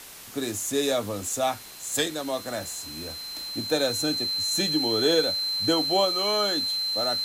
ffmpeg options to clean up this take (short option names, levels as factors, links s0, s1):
-af "adeclick=t=4,bandreject=f=4100:w=30,afwtdn=0.0071"